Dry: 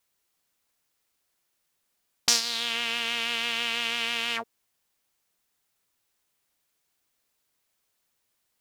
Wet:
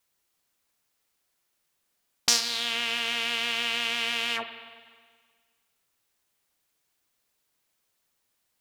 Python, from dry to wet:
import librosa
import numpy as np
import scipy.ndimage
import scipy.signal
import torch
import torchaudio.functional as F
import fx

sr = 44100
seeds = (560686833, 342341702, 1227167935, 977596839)

y = fx.rev_spring(x, sr, rt60_s=1.7, pass_ms=(46, 52), chirp_ms=20, drr_db=9.5)